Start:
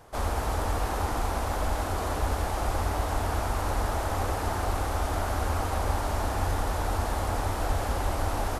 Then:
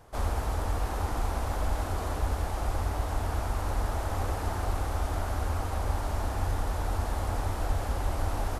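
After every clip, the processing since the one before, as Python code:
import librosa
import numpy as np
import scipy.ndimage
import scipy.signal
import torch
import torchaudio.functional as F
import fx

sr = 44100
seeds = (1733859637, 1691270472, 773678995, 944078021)

y = fx.low_shelf(x, sr, hz=160.0, db=5.5)
y = fx.rider(y, sr, range_db=10, speed_s=0.5)
y = F.gain(torch.from_numpy(y), -5.0).numpy()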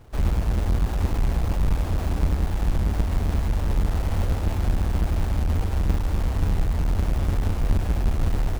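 y = fx.halfwave_hold(x, sr)
y = fx.low_shelf(y, sr, hz=440.0, db=8.5)
y = F.gain(torch.from_numpy(y), -5.5).numpy()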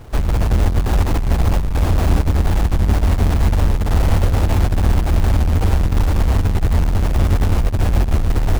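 y = fx.over_compress(x, sr, threshold_db=-22.0, ratio=-0.5)
y = F.gain(torch.from_numpy(y), 9.0).numpy()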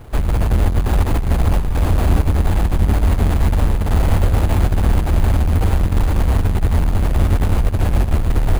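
y = x + 10.0 ** (-14.0 / 20.0) * np.pad(x, (int(718 * sr / 1000.0), 0))[:len(x)]
y = np.repeat(scipy.signal.resample_poly(y, 1, 4), 4)[:len(y)]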